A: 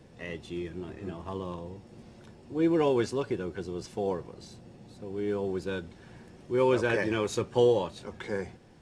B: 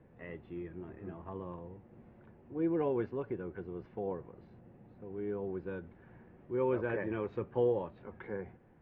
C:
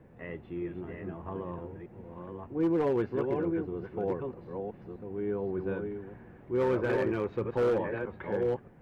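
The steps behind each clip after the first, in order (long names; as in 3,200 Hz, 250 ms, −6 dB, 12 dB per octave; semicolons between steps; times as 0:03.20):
low-pass filter 2,100 Hz 24 dB per octave; dynamic equaliser 1,600 Hz, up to −3 dB, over −39 dBFS, Q 0.71; level −6.5 dB
delay that plays each chunk backwards 620 ms, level −5 dB; hard clipping −27.5 dBFS, distortion −16 dB; level +5 dB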